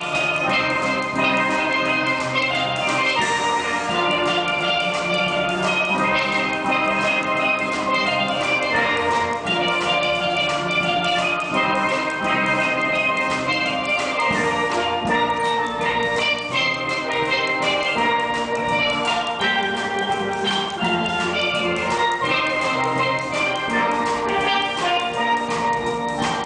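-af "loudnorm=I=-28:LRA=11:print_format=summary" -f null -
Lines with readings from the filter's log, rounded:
Input Integrated:    -19.8 LUFS
Input True Peak:      -6.6 dBTP
Input LRA:             1.5 LU
Input Threshold:     -29.8 LUFS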